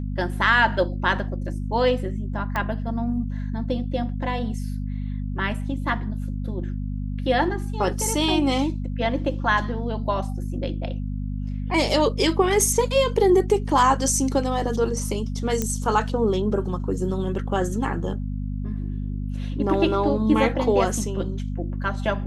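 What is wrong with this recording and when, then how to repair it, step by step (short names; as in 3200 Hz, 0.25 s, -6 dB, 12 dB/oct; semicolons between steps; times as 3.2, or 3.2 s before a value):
hum 50 Hz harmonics 5 -28 dBFS
2.56 pop -13 dBFS
15.62 pop -10 dBFS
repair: de-click; de-hum 50 Hz, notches 5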